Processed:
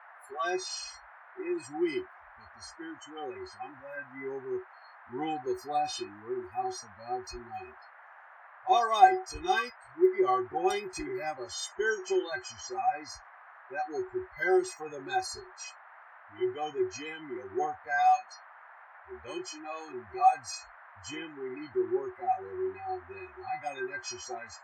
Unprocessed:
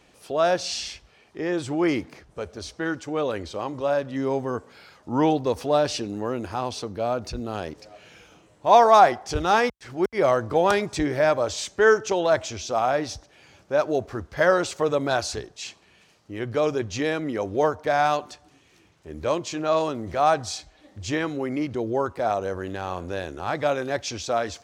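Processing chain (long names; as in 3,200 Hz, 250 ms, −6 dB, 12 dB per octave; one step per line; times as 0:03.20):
stiff-string resonator 370 Hz, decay 0.23 s, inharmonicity 0.008
noise reduction from a noise print of the clip's start 30 dB
noise in a band 670–1,800 Hz −60 dBFS
level +7 dB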